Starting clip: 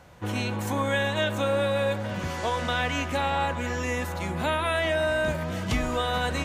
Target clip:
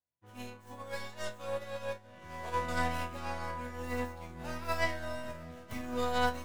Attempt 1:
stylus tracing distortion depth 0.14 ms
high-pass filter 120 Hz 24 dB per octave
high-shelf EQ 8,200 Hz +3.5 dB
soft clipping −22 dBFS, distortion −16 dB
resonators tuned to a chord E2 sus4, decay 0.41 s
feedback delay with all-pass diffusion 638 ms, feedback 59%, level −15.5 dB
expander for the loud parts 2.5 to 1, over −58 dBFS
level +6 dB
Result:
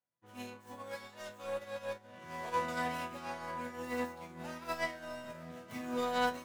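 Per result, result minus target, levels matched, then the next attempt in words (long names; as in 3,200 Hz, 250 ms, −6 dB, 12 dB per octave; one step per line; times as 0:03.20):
soft clipping: distortion +15 dB; 125 Hz band −6.5 dB
stylus tracing distortion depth 0.14 ms
high-pass filter 120 Hz 24 dB per octave
high-shelf EQ 8,200 Hz +3.5 dB
soft clipping −12.5 dBFS, distortion −30 dB
resonators tuned to a chord E2 sus4, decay 0.41 s
feedback delay with all-pass diffusion 638 ms, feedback 59%, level −15.5 dB
expander for the loud parts 2.5 to 1, over −58 dBFS
level +6 dB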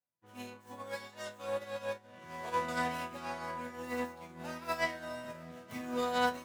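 125 Hz band −7.5 dB
stylus tracing distortion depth 0.14 ms
high-shelf EQ 8,200 Hz +3.5 dB
soft clipping −12.5 dBFS, distortion −30 dB
resonators tuned to a chord E2 sus4, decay 0.41 s
feedback delay with all-pass diffusion 638 ms, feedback 59%, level −15.5 dB
expander for the loud parts 2.5 to 1, over −58 dBFS
level +6 dB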